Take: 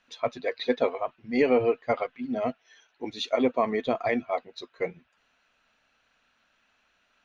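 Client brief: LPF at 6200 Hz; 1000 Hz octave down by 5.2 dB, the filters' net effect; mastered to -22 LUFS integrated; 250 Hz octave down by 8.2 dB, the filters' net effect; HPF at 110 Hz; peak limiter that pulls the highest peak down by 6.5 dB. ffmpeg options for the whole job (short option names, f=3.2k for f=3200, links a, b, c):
-af "highpass=110,lowpass=6.2k,equalizer=f=250:t=o:g=-8.5,equalizer=f=1k:t=o:g=-7.5,volume=12.5dB,alimiter=limit=-8.5dB:level=0:latency=1"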